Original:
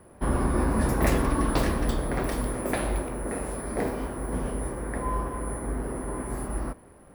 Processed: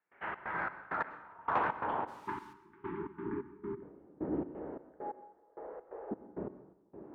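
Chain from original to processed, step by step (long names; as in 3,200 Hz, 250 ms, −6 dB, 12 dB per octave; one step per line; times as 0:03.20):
0:04.54–0:06.11: elliptic band-stop filter 200–660 Hz
single-sideband voice off tune −190 Hz 240–3,100 Hz
on a send: echo with a time of its own for lows and highs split 550 Hz, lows 300 ms, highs 449 ms, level −14 dB
on the sum: gate pattern ".xx.xx..x..." 132 BPM −24 dB
0:02.07–0:02.52: background noise white −48 dBFS
band-pass filter sweep 2,000 Hz → 340 Hz, 0:00.23–0:04.11
in parallel at −10 dB: soft clipping −33.5 dBFS, distortion −16 dB
0:02.09–0:03.83: on the sum: time-frequency box erased 410–840 Hz
dense smooth reverb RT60 0.69 s, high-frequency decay 0.85×, pre-delay 90 ms, DRR 13.5 dB
level +4.5 dB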